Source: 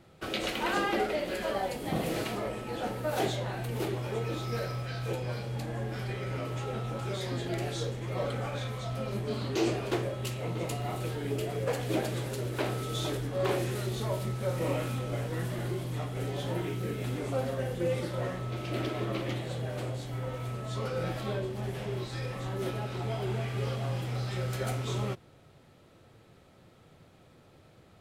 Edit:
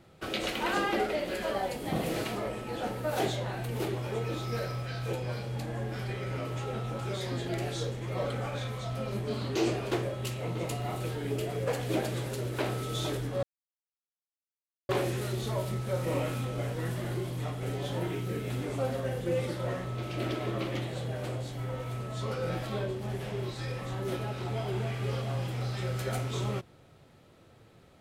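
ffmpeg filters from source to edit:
ffmpeg -i in.wav -filter_complex "[0:a]asplit=2[link_01][link_02];[link_01]atrim=end=13.43,asetpts=PTS-STARTPTS,afade=type=out:start_time=13.426:duration=0.004:curve=hsin,apad=pad_dur=1.46[link_03];[link_02]atrim=start=13.43,asetpts=PTS-STARTPTS,afade=type=in:duration=0.004:curve=hsin[link_04];[link_03][link_04]concat=n=2:v=0:a=1" out.wav

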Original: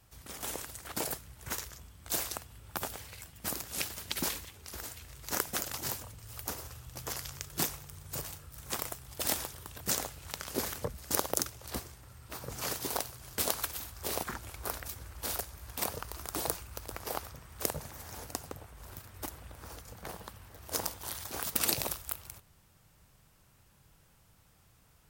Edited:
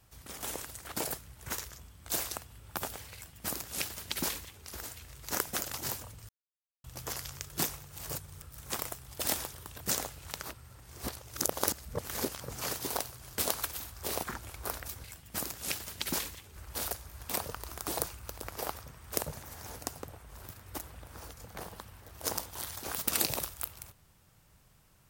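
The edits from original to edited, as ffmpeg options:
ffmpeg -i in.wav -filter_complex "[0:a]asplit=9[link_01][link_02][link_03][link_04][link_05][link_06][link_07][link_08][link_09];[link_01]atrim=end=6.29,asetpts=PTS-STARTPTS,afade=type=out:start_time=6.286:duration=0.004:curve=hsin[link_10];[link_02]atrim=start=6.29:end=6.84,asetpts=PTS-STARTPTS,volume=0[link_11];[link_03]atrim=start=6.84:end=7.892,asetpts=PTS-STARTPTS,afade=type=in:duration=0.004:curve=hsin[link_12];[link_04]atrim=start=7.888:end=8.422,asetpts=PTS-STARTPTS,areverse[link_13];[link_05]atrim=start=8.418:end=10.432[link_14];[link_06]atrim=start=10.428:end=12.402,asetpts=PTS-STARTPTS,areverse[link_15];[link_07]atrim=start=12.398:end=15.042[link_16];[link_08]atrim=start=3.138:end=4.662[link_17];[link_09]atrim=start=15.038[link_18];[link_10][link_11][link_12]concat=n=3:v=0:a=1[link_19];[link_19][link_13]acrossfade=duration=0.004:curve1=hsin:curve2=hsin[link_20];[link_20][link_14]acrossfade=duration=0.004:curve1=hsin:curve2=hsin[link_21];[link_21][link_15]acrossfade=duration=0.004:curve1=hsin:curve2=hsin[link_22];[link_22][link_16]acrossfade=duration=0.004:curve1=hsin:curve2=hsin[link_23];[link_23][link_17]acrossfade=duration=0.004:curve1=hsin:curve2=hsin[link_24];[link_24][link_18]acrossfade=duration=0.004:curve1=hsin:curve2=hsin" out.wav

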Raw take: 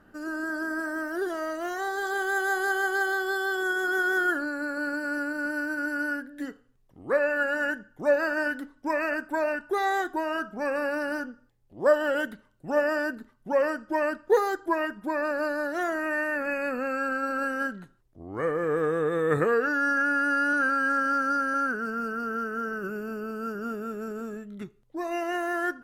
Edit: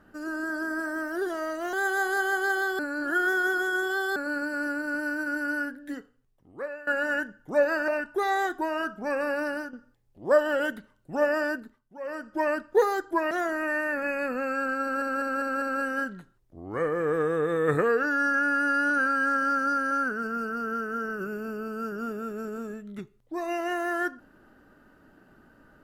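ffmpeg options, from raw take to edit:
ffmpeg -i in.wav -filter_complex "[0:a]asplit=14[link_01][link_02][link_03][link_04][link_05][link_06][link_07][link_08][link_09][link_10][link_11][link_12][link_13][link_14];[link_01]atrim=end=1.732[link_15];[link_02]atrim=start=2.238:end=3.302[link_16];[link_03]atrim=start=3.298:end=4.672,asetpts=PTS-STARTPTS,areverse[link_17];[link_04]atrim=start=4.668:end=7.38,asetpts=PTS-STARTPTS,afade=type=out:start_time=1.612:duration=1.1:silence=0.112202[link_18];[link_05]atrim=start=7.38:end=8.392,asetpts=PTS-STARTPTS,afade=type=in:duration=0.004:curve=hsin:silence=0.112202[link_19];[link_06]atrim=start=9.428:end=11.28,asetpts=PTS-STARTPTS,afade=type=out:start_time=1.602:duration=0.25:silence=0.375837[link_20];[link_07]atrim=start=11.28:end=13.46,asetpts=PTS-STARTPTS,afade=type=in:duration=0.004:curve=hsin:silence=0.375837,afade=type=out:start_time=1.77:duration=0.41:silence=0.158489[link_21];[link_08]atrim=start=13.46:end=13.55,asetpts=PTS-STARTPTS,volume=-16dB[link_22];[link_09]atrim=start=13.55:end=14.862,asetpts=PTS-STARTPTS,afade=type=in:duration=0.41:silence=0.158489[link_23];[link_10]atrim=start=15.738:end=17.452[link_24];[link_11]atrim=start=17.248:end=17.452[link_25];[link_12]atrim=start=17.248:end=17.452[link_26];[link_13]atrim=start=17.248:end=17.452[link_27];[link_14]atrim=start=17.248[link_28];[link_15][link_16]acrossfade=duration=0.004:curve1=hsin:curve2=hsin[link_29];[link_29][link_17]acrossfade=duration=0.004:curve1=hsin:curve2=hsin[link_30];[link_18][link_19]concat=n=2:v=0:a=1[link_31];[link_30][link_31]acrossfade=duration=0.004:curve1=hsin:curve2=hsin[link_32];[link_20][link_21][link_22][link_23]concat=n=4:v=0:a=1[link_33];[link_32][link_33]acrossfade=duration=0.004:curve1=hsin:curve2=hsin[link_34];[link_34][link_24]acrossfade=duration=0.004:curve1=hsin:curve2=hsin[link_35];[link_35][link_25]acrossfade=duration=0.004:curve1=hsin:curve2=hsin[link_36];[link_36][link_26]acrossfade=duration=0.004:curve1=hsin:curve2=hsin[link_37];[link_37][link_27]acrossfade=duration=0.004:curve1=hsin:curve2=hsin[link_38];[link_38][link_28]acrossfade=duration=0.004:curve1=hsin:curve2=hsin" out.wav

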